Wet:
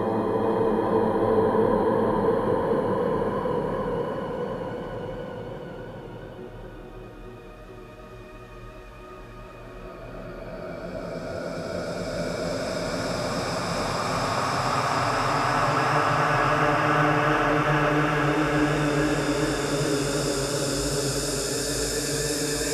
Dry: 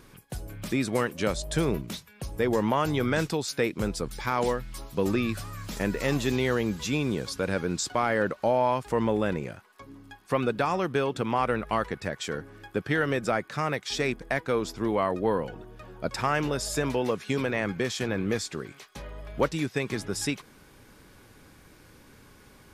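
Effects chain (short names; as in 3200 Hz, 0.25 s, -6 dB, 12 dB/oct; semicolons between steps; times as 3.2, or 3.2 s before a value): Paulstretch 15×, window 0.50 s, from 15.22; warbling echo 0.427 s, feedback 56%, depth 69 cents, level -6 dB; gain +2.5 dB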